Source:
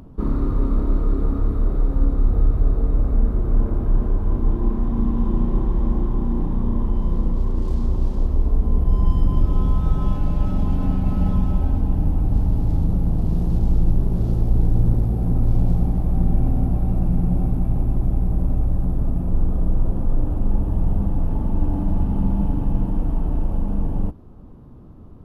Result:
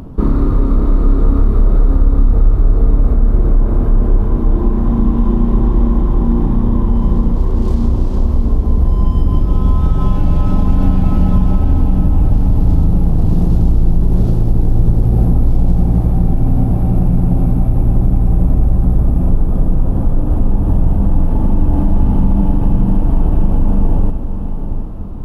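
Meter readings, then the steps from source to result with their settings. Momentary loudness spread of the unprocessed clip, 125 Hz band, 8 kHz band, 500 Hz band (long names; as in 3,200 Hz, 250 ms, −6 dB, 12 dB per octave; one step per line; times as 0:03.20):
4 LU, +7.5 dB, can't be measured, +8.0 dB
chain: downward compressor 3 to 1, threshold −20 dBFS, peak gain reduction 8 dB
feedback delay with all-pass diffusion 706 ms, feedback 43%, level −8.5 dB
boost into a limiter +12.5 dB
level −1 dB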